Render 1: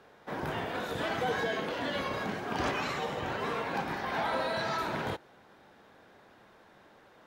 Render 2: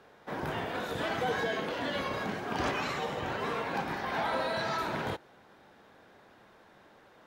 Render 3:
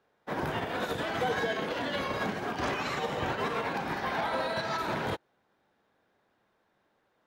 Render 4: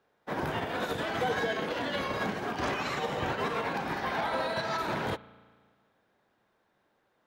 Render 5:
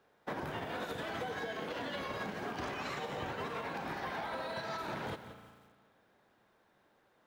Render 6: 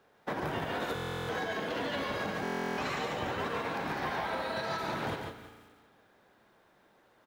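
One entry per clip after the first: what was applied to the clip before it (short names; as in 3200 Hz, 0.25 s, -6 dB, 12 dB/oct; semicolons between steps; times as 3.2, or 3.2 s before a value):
nothing audible
limiter -28.5 dBFS, peak gain reduction 9 dB; upward expander 2.5:1, over -50 dBFS; gain +8.5 dB
spring tank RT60 1.7 s, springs 35 ms, chirp 40 ms, DRR 18.5 dB
compressor 10:1, threshold -39 dBFS, peak gain reduction 13.5 dB; lo-fi delay 0.176 s, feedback 35%, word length 10-bit, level -12 dB; gain +2.5 dB
echo 0.143 s -4.5 dB; stuck buffer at 0.94/2.43, samples 1024, times 14; gain +4 dB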